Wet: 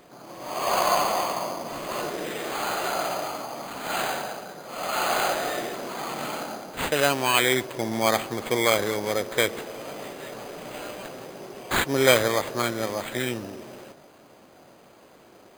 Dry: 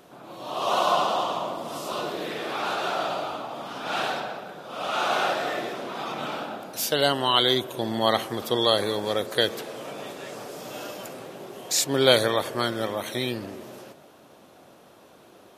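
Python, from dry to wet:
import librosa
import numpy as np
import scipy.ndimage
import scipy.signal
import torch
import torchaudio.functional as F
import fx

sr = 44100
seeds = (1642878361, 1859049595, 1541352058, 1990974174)

y = np.repeat(x[::8], 8)[:len(x)]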